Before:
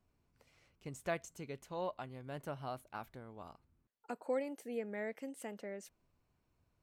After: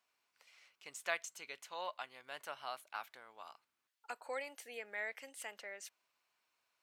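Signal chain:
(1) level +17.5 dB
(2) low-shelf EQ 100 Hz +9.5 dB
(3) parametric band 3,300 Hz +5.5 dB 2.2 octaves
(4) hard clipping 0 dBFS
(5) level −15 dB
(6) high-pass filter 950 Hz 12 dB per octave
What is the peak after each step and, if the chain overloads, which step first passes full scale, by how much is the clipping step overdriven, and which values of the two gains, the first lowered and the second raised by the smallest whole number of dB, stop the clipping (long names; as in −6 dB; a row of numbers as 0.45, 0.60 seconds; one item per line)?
−7.0, −6.5, −4.5, −4.5, −19.5, −20.5 dBFS
no step passes full scale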